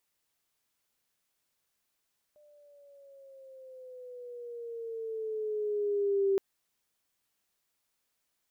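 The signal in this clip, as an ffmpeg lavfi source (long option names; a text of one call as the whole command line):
ffmpeg -f lavfi -i "aevalsrc='pow(10,(-23+34.5*(t/4.02-1))/20)*sin(2*PI*599*4.02/(-7.5*log(2)/12)*(exp(-7.5*log(2)/12*t/4.02)-1))':duration=4.02:sample_rate=44100" out.wav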